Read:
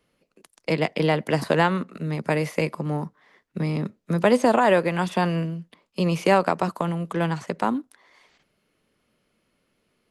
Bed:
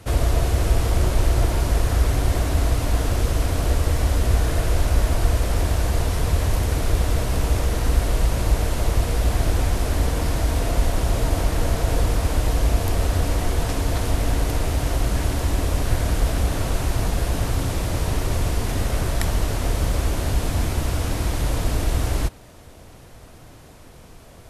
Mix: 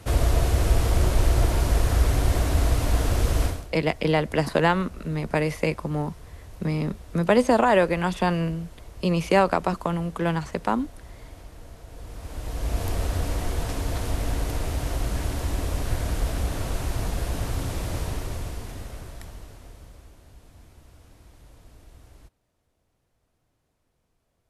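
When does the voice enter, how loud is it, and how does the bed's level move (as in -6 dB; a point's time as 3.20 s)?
3.05 s, -0.5 dB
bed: 3.46 s -1.5 dB
3.70 s -23 dB
11.90 s -23 dB
12.82 s -5.5 dB
17.97 s -5.5 dB
20.20 s -28.5 dB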